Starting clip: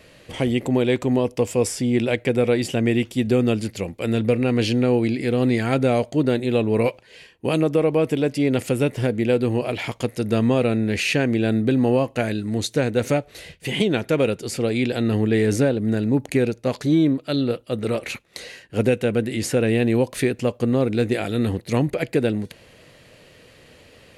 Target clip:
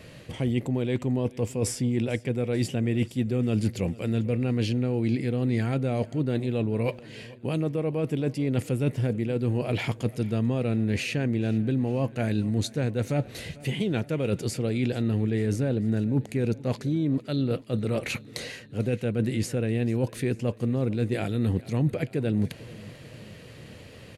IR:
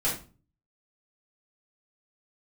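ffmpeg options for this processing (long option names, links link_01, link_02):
-af "areverse,acompressor=threshold=-27dB:ratio=10,areverse,equalizer=frequency=130:width_type=o:width=1.7:gain=9,aecho=1:1:443|886|1329|1772|2215:0.0891|0.0535|0.0321|0.0193|0.0116"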